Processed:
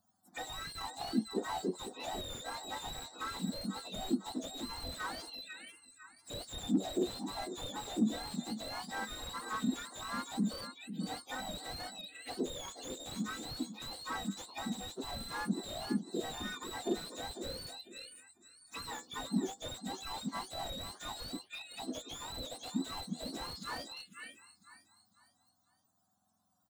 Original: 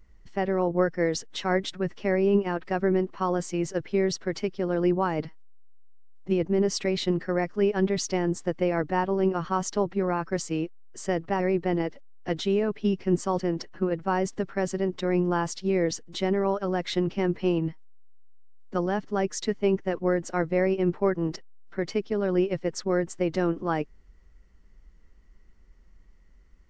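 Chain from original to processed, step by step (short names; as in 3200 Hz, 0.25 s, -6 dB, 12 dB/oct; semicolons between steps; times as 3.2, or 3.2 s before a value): spectrum mirrored in octaves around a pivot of 1200 Hz; in parallel at -11 dB: hard clip -24.5 dBFS, distortion -13 dB; on the sum: flange 0.19 Hz, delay 4.5 ms, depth 9.9 ms, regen +57%; on a send: feedback echo 0.499 s, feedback 34%, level -11.5 dB; on the sum: envelope phaser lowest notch 410 Hz, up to 2600 Hz, full sweep at -33 dBFS; slew limiter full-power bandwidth 29 Hz; gain -1 dB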